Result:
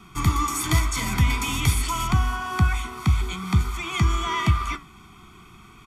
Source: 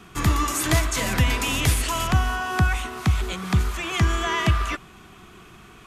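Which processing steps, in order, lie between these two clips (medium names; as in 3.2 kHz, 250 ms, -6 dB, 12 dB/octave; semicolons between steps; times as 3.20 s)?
comb 0.9 ms, depth 82%; flange 0.49 Hz, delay 5 ms, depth 9.9 ms, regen -72%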